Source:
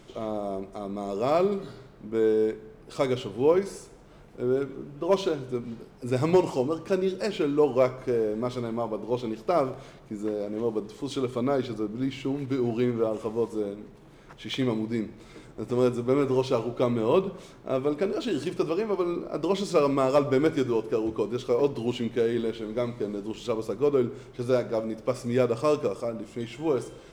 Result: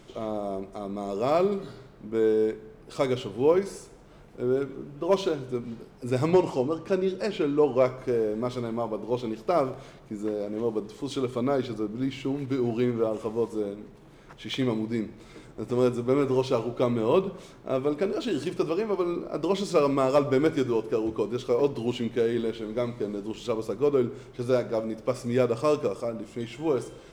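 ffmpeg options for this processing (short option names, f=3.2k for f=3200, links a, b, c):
-filter_complex "[0:a]asettb=1/sr,asplit=3[a][b][c];[a]atrim=end=6.274[d];[b]atrim=start=6.27:end=7.86,asetpts=PTS-STARTPTS,afade=t=in:d=0.004:c=qsin,afade=t=out:st=1.586:d=0.004:c=qsin,highshelf=f=7k:g=-7[e];[c]atrim=start=7.856[f];[d][e]acrossfade=d=0.004:c1=hsin:c2=qsin[g];[g][f]acrossfade=d=0.004:c1=qsin:c2=hsin"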